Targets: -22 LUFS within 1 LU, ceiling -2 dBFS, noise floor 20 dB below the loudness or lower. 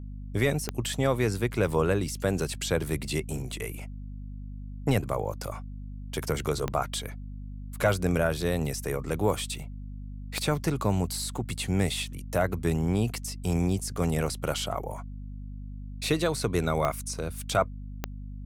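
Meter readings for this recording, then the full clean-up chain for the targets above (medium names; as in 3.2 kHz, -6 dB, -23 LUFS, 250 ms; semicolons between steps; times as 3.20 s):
clicks found 5; hum 50 Hz; highest harmonic 250 Hz; hum level -36 dBFS; loudness -29.0 LUFS; peak level -12.0 dBFS; loudness target -22.0 LUFS
-> de-click; hum notches 50/100/150/200/250 Hz; trim +7 dB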